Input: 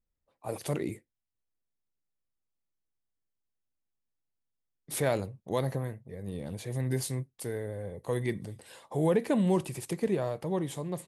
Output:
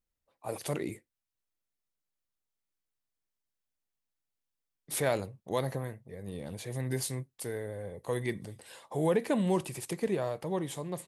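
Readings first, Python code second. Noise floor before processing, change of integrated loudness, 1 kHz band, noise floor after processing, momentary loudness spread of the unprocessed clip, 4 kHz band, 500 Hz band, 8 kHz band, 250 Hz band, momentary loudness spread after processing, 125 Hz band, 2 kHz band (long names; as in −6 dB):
−84 dBFS, −1.5 dB, 0.0 dB, below −85 dBFS, 13 LU, +1.0 dB, −1.0 dB, +1.0 dB, −2.5 dB, 13 LU, −3.5 dB, +0.5 dB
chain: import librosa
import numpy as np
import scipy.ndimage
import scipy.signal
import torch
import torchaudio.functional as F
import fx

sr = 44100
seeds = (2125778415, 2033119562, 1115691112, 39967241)

y = fx.low_shelf(x, sr, hz=420.0, db=-5.0)
y = F.gain(torch.from_numpy(y), 1.0).numpy()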